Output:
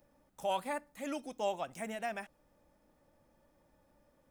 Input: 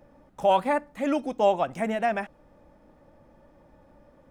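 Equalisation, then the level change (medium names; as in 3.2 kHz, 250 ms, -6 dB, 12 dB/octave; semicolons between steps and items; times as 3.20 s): pre-emphasis filter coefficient 0.8; 0.0 dB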